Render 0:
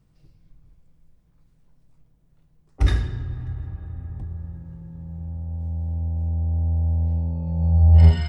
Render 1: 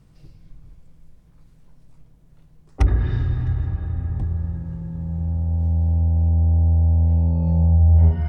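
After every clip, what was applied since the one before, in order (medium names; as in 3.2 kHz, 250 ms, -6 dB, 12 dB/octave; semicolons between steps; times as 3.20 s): low-pass that closes with the level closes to 1 kHz, closed at -13.5 dBFS; compression 3:1, threshold -23 dBFS, peak gain reduction 11.5 dB; trim +8.5 dB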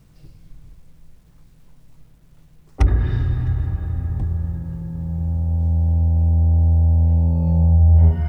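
bit crusher 11-bit; trim +1.5 dB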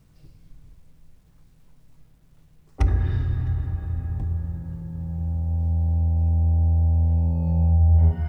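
feedback comb 87 Hz, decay 0.99 s, harmonics odd, mix 60%; trim +2.5 dB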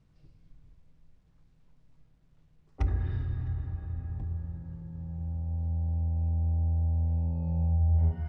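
distance through air 86 m; trim -8 dB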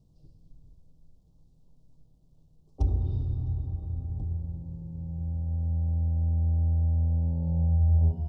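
Butterworth band-stop 1.8 kHz, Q 0.51; trim +2.5 dB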